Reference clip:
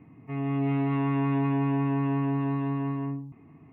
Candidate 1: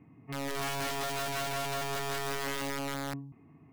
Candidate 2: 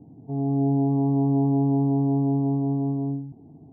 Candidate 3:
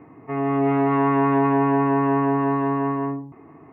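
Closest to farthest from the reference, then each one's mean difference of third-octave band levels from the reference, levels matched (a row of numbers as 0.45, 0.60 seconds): 3, 2, 1; 3.5, 5.0, 14.5 decibels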